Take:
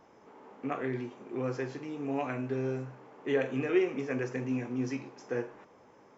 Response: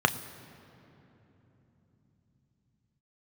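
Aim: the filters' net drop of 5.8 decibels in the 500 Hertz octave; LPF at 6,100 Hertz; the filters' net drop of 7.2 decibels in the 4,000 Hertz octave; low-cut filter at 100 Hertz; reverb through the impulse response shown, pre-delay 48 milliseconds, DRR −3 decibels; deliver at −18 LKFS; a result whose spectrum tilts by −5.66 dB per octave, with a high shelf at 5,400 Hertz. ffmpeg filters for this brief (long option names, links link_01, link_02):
-filter_complex "[0:a]highpass=100,lowpass=6100,equalizer=frequency=500:width_type=o:gain=-8,equalizer=frequency=4000:width_type=o:gain=-9,highshelf=frequency=5400:gain=-4.5,asplit=2[link_01][link_02];[1:a]atrim=start_sample=2205,adelay=48[link_03];[link_02][link_03]afir=irnorm=-1:irlink=0,volume=-11dB[link_04];[link_01][link_04]amix=inputs=2:normalize=0,volume=14dB"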